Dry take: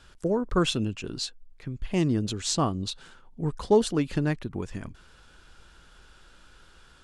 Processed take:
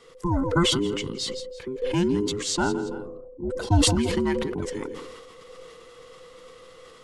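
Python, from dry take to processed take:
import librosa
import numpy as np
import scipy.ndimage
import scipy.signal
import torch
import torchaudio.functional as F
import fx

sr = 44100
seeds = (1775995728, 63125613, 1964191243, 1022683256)

p1 = fx.band_invert(x, sr, width_hz=500)
p2 = fx.rider(p1, sr, range_db=4, speed_s=2.0)
p3 = fx.gaussian_blur(p2, sr, sigma=12.0, at=(2.83, 3.49), fade=0.02)
p4 = p3 + fx.echo_feedback(p3, sr, ms=166, feedback_pct=24, wet_db=-16.0, dry=0)
y = fx.sustainer(p4, sr, db_per_s=33.0)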